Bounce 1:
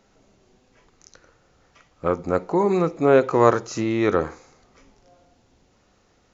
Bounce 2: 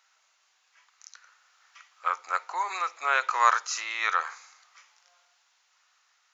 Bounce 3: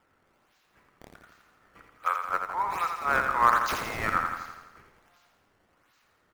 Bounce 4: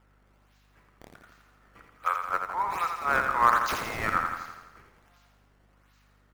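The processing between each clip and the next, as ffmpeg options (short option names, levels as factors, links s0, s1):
-af "highpass=f=1100:w=0.5412,highpass=f=1100:w=1.3066,dynaudnorm=f=290:g=9:m=1.58"
-filter_complex "[0:a]acrossover=split=760|1100|2100[s0][s1][s2][s3];[s3]acrusher=samples=20:mix=1:aa=0.000001:lfo=1:lforange=32:lforate=1.3[s4];[s0][s1][s2][s4]amix=inputs=4:normalize=0,aecho=1:1:84|168|252|336|420|504|588|672:0.501|0.291|0.169|0.0978|0.0567|0.0329|0.0191|0.0111"
-af "aeval=exprs='val(0)+0.000708*(sin(2*PI*50*n/s)+sin(2*PI*2*50*n/s)/2+sin(2*PI*3*50*n/s)/3+sin(2*PI*4*50*n/s)/4+sin(2*PI*5*50*n/s)/5)':c=same"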